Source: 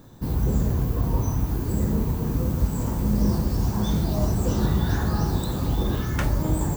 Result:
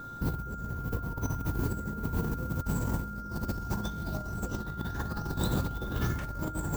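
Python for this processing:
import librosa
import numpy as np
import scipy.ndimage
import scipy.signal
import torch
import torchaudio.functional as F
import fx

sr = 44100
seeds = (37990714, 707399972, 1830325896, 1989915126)

y = fx.over_compress(x, sr, threshold_db=-27.0, ratio=-0.5)
y = y + 10.0 ** (-36.0 / 20.0) * np.sin(2.0 * np.pi * 1400.0 * np.arange(len(y)) / sr)
y = y * 10.0 ** (-5.0 / 20.0)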